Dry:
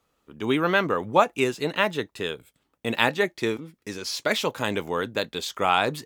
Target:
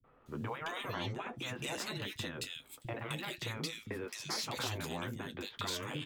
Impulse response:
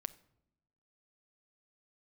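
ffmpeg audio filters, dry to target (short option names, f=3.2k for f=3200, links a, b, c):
-filter_complex "[0:a]asettb=1/sr,asplit=3[a][b][c];[a]atrim=end=0.684[d];[b]atrim=start=0.68:end=1.12,asetpts=PTS-STARTPTS,afade=t=in:d=0.004:c=qsin,afade=t=out:st=0.436:d=0.004:c=qsin,lowpass=8.3k[e];[c]atrim=start=1.116[f];[d][e]acrossfade=d=0.004:c1=hsin:c2=qsin[g];[g][f]acrossfade=d=0.004:c1=qsin:c2=hsin,afftfilt=real='re*lt(hypot(re,im),0.158)':imag='im*lt(hypot(re,im),0.158)':win_size=1024:overlap=0.75,acrossover=split=420[h][i];[i]acompressor=threshold=-35dB:ratio=2.5[j];[h][j]amix=inputs=2:normalize=0,alimiter=level_in=3.5dB:limit=-24dB:level=0:latency=1,volume=-3.5dB,acompressor=threshold=-43dB:ratio=6,flanger=delay=7.7:depth=1:regen=-46:speed=0.81:shape=sinusoidal,acrossover=split=210|2200[k][l][m];[l]adelay=40[n];[m]adelay=260[o];[k][n][o]amix=inputs=3:normalize=0,volume=12dB"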